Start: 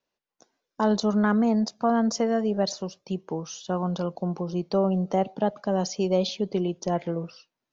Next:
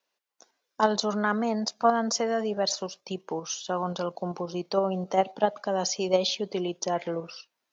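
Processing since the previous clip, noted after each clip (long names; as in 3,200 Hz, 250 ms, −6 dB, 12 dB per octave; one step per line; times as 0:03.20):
high-pass filter 760 Hz 6 dB per octave
in parallel at +3 dB: output level in coarse steps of 13 dB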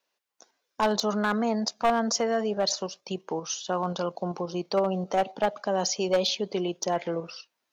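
hard clipping −18 dBFS, distortion −13 dB
level +1 dB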